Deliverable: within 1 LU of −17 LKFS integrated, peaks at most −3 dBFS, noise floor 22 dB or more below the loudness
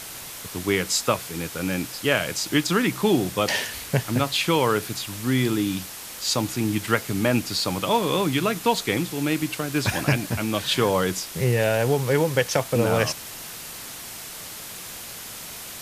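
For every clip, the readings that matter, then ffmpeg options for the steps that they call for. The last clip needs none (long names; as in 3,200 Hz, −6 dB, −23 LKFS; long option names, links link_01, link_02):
background noise floor −38 dBFS; target noise floor −46 dBFS; integrated loudness −23.5 LKFS; sample peak −4.5 dBFS; target loudness −17.0 LKFS
→ -af "afftdn=noise_reduction=8:noise_floor=-38"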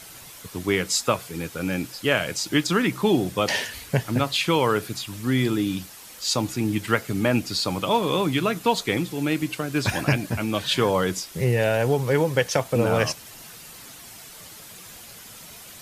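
background noise floor −44 dBFS; target noise floor −46 dBFS
→ -af "afftdn=noise_reduction=6:noise_floor=-44"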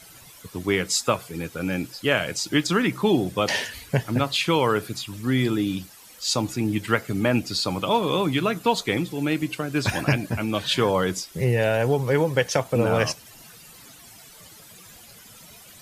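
background noise floor −48 dBFS; integrated loudness −24.0 LKFS; sample peak −5.0 dBFS; target loudness −17.0 LKFS
→ -af "volume=7dB,alimiter=limit=-3dB:level=0:latency=1"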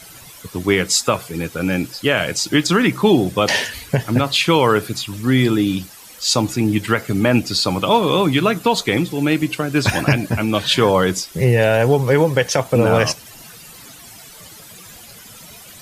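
integrated loudness −17.5 LKFS; sample peak −3.0 dBFS; background noise floor −41 dBFS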